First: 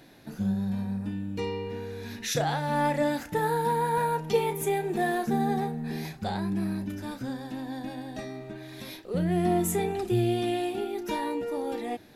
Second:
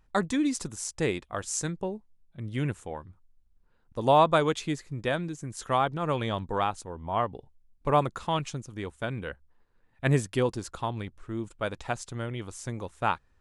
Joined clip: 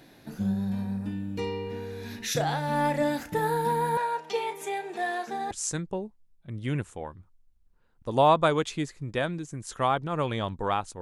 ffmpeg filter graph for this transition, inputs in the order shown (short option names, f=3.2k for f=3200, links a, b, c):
-filter_complex "[0:a]asettb=1/sr,asplit=3[a][b][c];[a]atrim=end=3.974[d];[b]atrim=start=3.97:end=5.51,asetpts=PTS-STARTPTS,afade=t=in:d=0.004:c=qsin,afade=t=out:st=1.536:d=0.004:c=qsin,highpass=580,lowpass=7.2k[e];[c]atrim=start=5.506[f];[d][e]acrossfade=d=0.004:c1=hsin:c2=qsin[g];[g][f]acrossfade=d=0.004:c1=qsin:c2=hsin,apad=whole_dur=11.01,atrim=end=11.01,atrim=end=5.512[h];[1:a]atrim=start=1.408:end=6.91[i];[h][i]acrossfade=d=0.004:c1=hsin:c2=hsin"